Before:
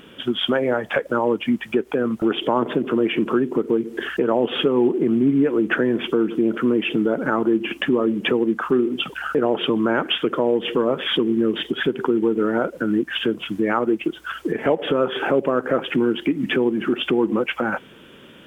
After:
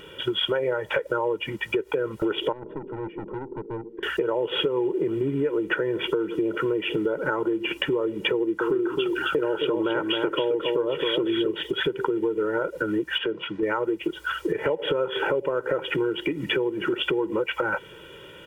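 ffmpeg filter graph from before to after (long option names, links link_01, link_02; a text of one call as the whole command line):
ffmpeg -i in.wav -filter_complex "[0:a]asettb=1/sr,asplit=3[link_01][link_02][link_03];[link_01]atrim=end=2.524[link_04];[link_02]atrim=start=2.52:end=4.03,asetpts=PTS-STARTPTS,afade=type=in:duration=0.004:curve=qsin,afade=type=out:start_time=1.506:duration=0.004:curve=qsin,bandpass=frequency=230:width_type=q:width=2.4,aeval=exprs='(tanh(20*val(0)+0.1)-tanh(0.1))/20':channel_layout=same[link_05];[link_03]atrim=start=4.026[link_06];[link_04][link_05]acrossfade=duration=0.004:curve1=hsin:curve2=qsin[link_07];[link_07][link_06]acrossfade=duration=0.004:curve1=qsin:curve2=hsin,asettb=1/sr,asplit=3[link_08][link_09][link_10];[link_08]atrim=end=8.344[link_11];[link_09]atrim=start=8.34:end=11.51,asetpts=PTS-STARTPTS,afade=type=in:duration=0.004:curve=qsin,afade=type=out:start_time=3.166:duration=0.004:curve=qsin,equalizer=frequency=320:width_type=o:width=0.49:gain=5.5,aecho=1:1:267:0.562,atrim=end_sample=139797[link_12];[link_10]atrim=start=11.506[link_13];[link_11][link_12]acrossfade=duration=0.004:curve1=hsin:curve2=qsin[link_14];[link_14][link_13]acrossfade=duration=0.004:curve1=qsin:curve2=hsin,asettb=1/sr,asplit=3[link_15][link_16][link_17];[link_15]atrim=end=13.184[link_18];[link_16]atrim=start=13.18:end=13.63,asetpts=PTS-STARTPTS,afade=type=in:duration=0.004:curve=qsin,afade=type=out:start_time=0.446:duration=0.004:curve=qsin,highpass=140,lowpass=2800,acompressor=threshold=-23dB:ratio=2:attack=3.2:release=140:knee=1:detection=peak[link_19];[link_17]atrim=start=13.626[link_20];[link_18][link_19]acrossfade=duration=0.004:curve1=hsin:curve2=qsin[link_21];[link_21][link_20]acrossfade=duration=0.004:curve1=qsin:curve2=hsin,aecho=1:1:2.1:0.97,acompressor=threshold=-20dB:ratio=6,volume=-1.5dB" out.wav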